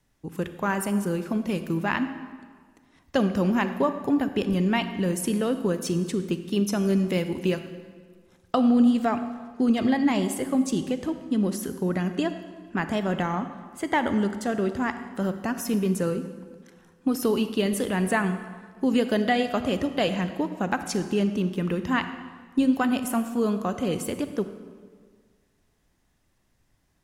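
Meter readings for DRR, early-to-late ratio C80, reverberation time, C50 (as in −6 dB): 9.5 dB, 11.5 dB, 1.7 s, 10.0 dB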